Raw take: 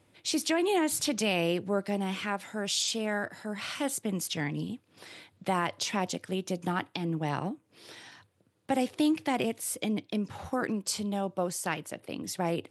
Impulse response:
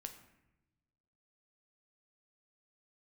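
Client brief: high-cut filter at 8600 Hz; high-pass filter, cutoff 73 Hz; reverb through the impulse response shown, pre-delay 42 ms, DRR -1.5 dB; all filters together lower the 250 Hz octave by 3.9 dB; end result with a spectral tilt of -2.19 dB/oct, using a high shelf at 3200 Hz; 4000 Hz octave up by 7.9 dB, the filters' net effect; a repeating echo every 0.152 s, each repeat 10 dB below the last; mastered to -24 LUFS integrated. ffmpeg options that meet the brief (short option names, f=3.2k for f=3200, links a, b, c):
-filter_complex "[0:a]highpass=73,lowpass=8.6k,equalizer=f=250:t=o:g=-5.5,highshelf=f=3.2k:g=5,equalizer=f=4k:t=o:g=6.5,aecho=1:1:152|304|456|608:0.316|0.101|0.0324|0.0104,asplit=2[a][b];[1:a]atrim=start_sample=2205,adelay=42[c];[b][c]afir=irnorm=-1:irlink=0,volume=5.5dB[d];[a][d]amix=inputs=2:normalize=0,volume=1dB"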